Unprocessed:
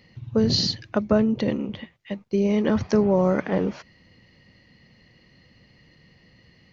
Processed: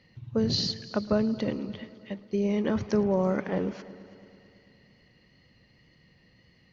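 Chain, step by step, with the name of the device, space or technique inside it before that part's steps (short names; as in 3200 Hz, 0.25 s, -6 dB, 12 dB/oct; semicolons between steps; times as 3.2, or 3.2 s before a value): multi-head tape echo (multi-head echo 0.11 s, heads all three, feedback 56%, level -23 dB; wow and flutter 21 cents); gain -5.5 dB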